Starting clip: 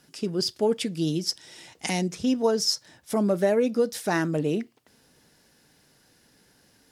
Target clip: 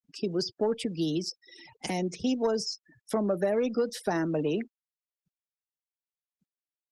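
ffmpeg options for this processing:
-filter_complex "[0:a]asoftclip=type=tanh:threshold=-12.5dB,acrossover=split=120|240|810|5700[a][b][c][d][e];[a]acompressor=threshold=-50dB:ratio=4[f];[b]acompressor=threshold=-42dB:ratio=4[g];[c]acompressor=threshold=-28dB:ratio=4[h];[d]acompressor=threshold=-37dB:ratio=4[i];[e]acompressor=threshold=-44dB:ratio=4[j];[f][g][h][i][j]amix=inputs=5:normalize=0,afftfilt=real='re*gte(hypot(re,im),0.00891)':imag='im*gte(hypot(re,im),0.00891)':win_size=1024:overlap=0.75,volume=1.5dB" -ar 48000 -c:a libopus -b:a 20k

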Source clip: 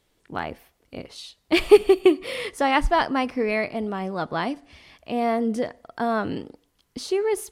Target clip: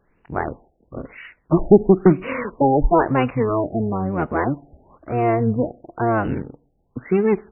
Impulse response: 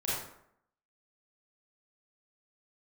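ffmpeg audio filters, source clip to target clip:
-filter_complex "[0:a]asplit=2[a][b];[b]asetrate=22050,aresample=44100,atempo=2,volume=-2dB[c];[a][c]amix=inputs=2:normalize=0,asoftclip=type=tanh:threshold=-6dB,afftfilt=real='re*lt(b*sr/1024,820*pow(3000/820,0.5+0.5*sin(2*PI*1*pts/sr)))':imag='im*lt(b*sr/1024,820*pow(3000/820,0.5+0.5*sin(2*PI*1*pts/sr)))':win_size=1024:overlap=0.75,volume=3.5dB"

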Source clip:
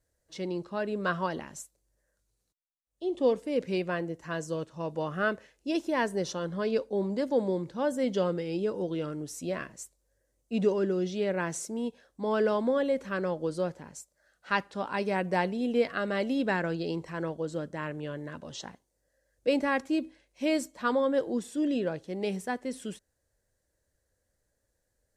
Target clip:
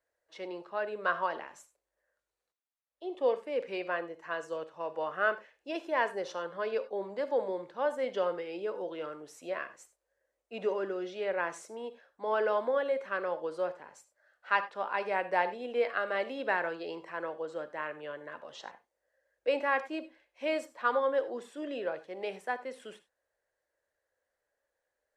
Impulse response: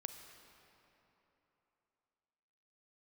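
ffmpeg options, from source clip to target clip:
-filter_complex "[0:a]acrossover=split=450 3000:gain=0.0631 1 0.178[a][b][c];[a][b][c]amix=inputs=3:normalize=0[d];[1:a]atrim=start_sample=2205,afade=t=out:st=0.15:d=0.01,atrim=end_sample=7056[e];[d][e]afir=irnorm=-1:irlink=0,volume=5dB"

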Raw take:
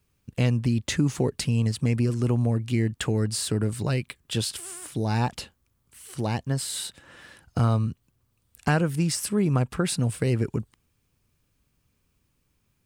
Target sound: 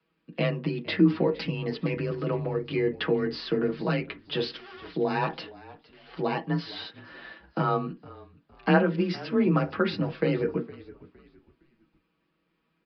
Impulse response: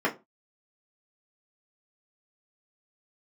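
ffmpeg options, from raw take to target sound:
-filter_complex "[0:a]acrossover=split=180 3600:gain=0.112 1 0.224[a][b][c];[a][b][c]amix=inputs=3:normalize=0,aecho=1:1:6.4:0.79,afreqshift=26,asplit=4[d][e][f][g];[e]adelay=462,afreqshift=-50,volume=-20dB[h];[f]adelay=924,afreqshift=-100,volume=-29.1dB[i];[g]adelay=1386,afreqshift=-150,volume=-38.2dB[j];[d][h][i][j]amix=inputs=4:normalize=0,asplit=2[k][l];[1:a]atrim=start_sample=2205,adelay=7[m];[l][m]afir=irnorm=-1:irlink=0,volume=-18.5dB[n];[k][n]amix=inputs=2:normalize=0,aresample=11025,aresample=44100"

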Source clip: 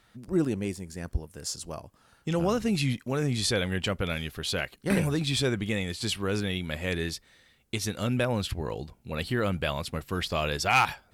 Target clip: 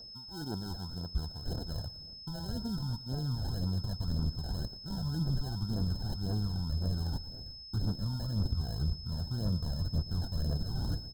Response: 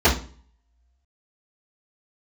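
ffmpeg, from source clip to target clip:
-filter_complex "[0:a]acrusher=samples=38:mix=1:aa=0.000001,areverse,acompressor=threshold=-40dB:ratio=12,areverse,asubboost=boost=4:cutoff=210,volume=30.5dB,asoftclip=hard,volume=-30.5dB,aphaser=in_gain=1:out_gain=1:delay=1.4:decay=0.52:speed=1.9:type=triangular,aeval=exprs='val(0)+0.00501*sin(2*PI*5200*n/s)':c=same,asuperstop=centerf=2300:order=8:qfactor=1.2,asplit=2[a][b];[b]aecho=0:1:116|232|348|464:0.141|0.0622|0.0273|0.012[c];[a][c]amix=inputs=2:normalize=0"

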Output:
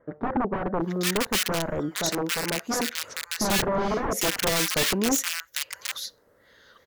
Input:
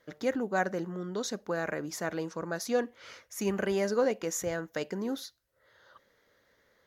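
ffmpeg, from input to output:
-filter_complex "[0:a]aeval=exprs='(mod(21.1*val(0)+1,2)-1)/21.1':c=same,asettb=1/sr,asplit=3[a][b][c];[a]atrim=end=1.894[d];[b]atrim=start=1.89:end=2.95,asetpts=PTS-STARTPTS,afade=t=in:d=0.004:c=qsin,afade=t=out:st=1.056:d=0.004:c=qsin,lowshelf=f=120:g=-9[e];[c]atrim=start=2.946[f];[d][e]acrossfade=d=0.004:c1=hsin:c2=qsin[g];[g][f]acrossfade=d=0.004:c1=qsin:c2=hsin,acrossover=split=1400[h][i];[i]adelay=800[j];[h][j]amix=inputs=2:normalize=0,volume=9dB"

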